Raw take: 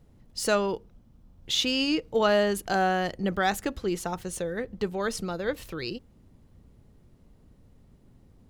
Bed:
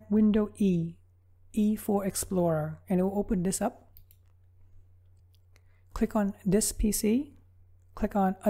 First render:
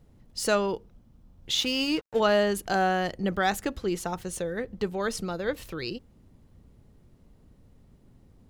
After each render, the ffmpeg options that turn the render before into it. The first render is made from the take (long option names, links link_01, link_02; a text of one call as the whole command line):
ffmpeg -i in.wav -filter_complex "[0:a]asettb=1/sr,asplit=3[link_01][link_02][link_03];[link_01]atrim=end=1.574[link_04];[link_02]atrim=start=1.57:end=2.2,asetpts=PTS-STARTPTS,afade=type=in:duration=0.004:curve=qsin,afade=type=out:start_time=0.626:duration=0.004:curve=qsin,aeval=exprs='sgn(val(0))*max(abs(val(0))-0.00891,0)':channel_layout=same[link_05];[link_03]atrim=start=2.196[link_06];[link_04][link_05]acrossfade=duration=0.004:curve1=hsin:curve2=qsin[link_07];[link_07][link_06]acrossfade=duration=0.004:curve1=qsin:curve2=hsin" out.wav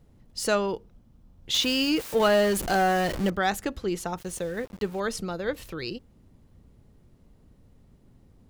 ffmpeg -i in.wav -filter_complex "[0:a]asettb=1/sr,asplit=3[link_01][link_02][link_03];[link_01]atrim=end=1.544[link_04];[link_02]atrim=start=1.54:end=3.3,asetpts=PTS-STARTPTS,afade=type=in:duration=0.004:curve=qsin,afade=type=out:start_time=1.756:duration=0.004:curve=qsin,aeval=exprs='val(0)+0.5*0.0398*sgn(val(0))':channel_layout=same[link_05];[link_03]atrim=start=3.296[link_06];[link_04][link_05]acrossfade=duration=0.004:curve1=hsin:curve2=qsin[link_07];[link_07][link_06]acrossfade=duration=0.004:curve1=qsin:curve2=hsin,asettb=1/sr,asplit=3[link_08][link_09][link_10];[link_08]atrim=end=4.184[link_11];[link_09]atrim=start=4.18:end=5,asetpts=PTS-STARTPTS,afade=type=in:duration=0.004:curve=qsin,afade=type=out:start_time=0.816:duration=0.004:curve=qsin,aeval=exprs='val(0)*gte(abs(val(0)),0.00668)':channel_layout=same[link_12];[link_10]atrim=start=4.996[link_13];[link_11][link_12]acrossfade=duration=0.004:curve1=hsin:curve2=qsin[link_14];[link_14][link_13]acrossfade=duration=0.004:curve1=qsin:curve2=hsin" out.wav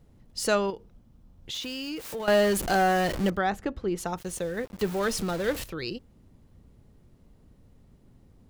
ffmpeg -i in.wav -filter_complex "[0:a]asettb=1/sr,asplit=3[link_01][link_02][link_03];[link_01]atrim=end=0.704[link_04];[link_02]atrim=start=0.7:end=2.28,asetpts=PTS-STARTPTS,afade=type=in:duration=0.004:curve=qsin,afade=type=out:start_time=1.576:duration=0.004:curve=qsin,acompressor=threshold=-35dB:ratio=3:attack=3.2:release=140:knee=1:detection=peak[link_05];[link_03]atrim=start=2.276[link_06];[link_04][link_05]acrossfade=duration=0.004:curve1=hsin:curve2=qsin[link_07];[link_07][link_06]acrossfade=duration=0.004:curve1=qsin:curve2=hsin,asplit=3[link_08][link_09][link_10];[link_08]afade=type=out:start_time=3.4:duration=0.02[link_11];[link_09]lowpass=frequency=1500:poles=1,afade=type=in:start_time=3.4:duration=0.02,afade=type=out:start_time=3.97:duration=0.02[link_12];[link_10]afade=type=in:start_time=3.97:duration=0.02[link_13];[link_11][link_12][link_13]amix=inputs=3:normalize=0,asettb=1/sr,asplit=3[link_14][link_15][link_16];[link_14]atrim=end=4.794[link_17];[link_15]atrim=start=4.79:end=5.64,asetpts=PTS-STARTPTS,afade=type=in:duration=0.004:curve=qsin,afade=type=out:start_time=0.846:duration=0.004:curve=qsin,aeval=exprs='val(0)+0.5*0.0237*sgn(val(0))':channel_layout=same[link_18];[link_16]atrim=start=5.636[link_19];[link_17][link_18]acrossfade=duration=0.004:curve1=hsin:curve2=qsin[link_20];[link_20][link_19]acrossfade=duration=0.004:curve1=qsin:curve2=hsin" out.wav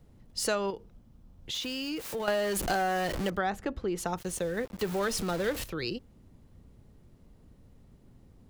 ffmpeg -i in.wav -filter_complex "[0:a]acrossover=split=380|1600[link_01][link_02][link_03];[link_01]alimiter=level_in=5dB:limit=-24dB:level=0:latency=1,volume=-5dB[link_04];[link_04][link_02][link_03]amix=inputs=3:normalize=0,acompressor=threshold=-25dB:ratio=6" out.wav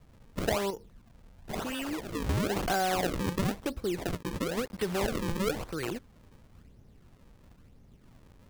ffmpeg -i in.wav -af "acrusher=samples=36:mix=1:aa=0.000001:lfo=1:lforange=57.6:lforate=0.99" out.wav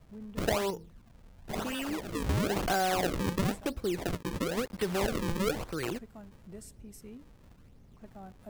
ffmpeg -i in.wav -i bed.wav -filter_complex "[1:a]volume=-22dB[link_01];[0:a][link_01]amix=inputs=2:normalize=0" out.wav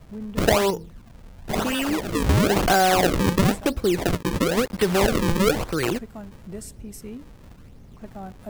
ffmpeg -i in.wav -af "volume=10.5dB" out.wav